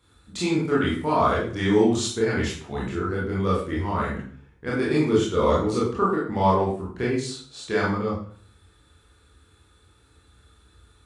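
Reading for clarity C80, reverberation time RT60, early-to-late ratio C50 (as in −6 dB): 8.0 dB, 0.50 s, 3.0 dB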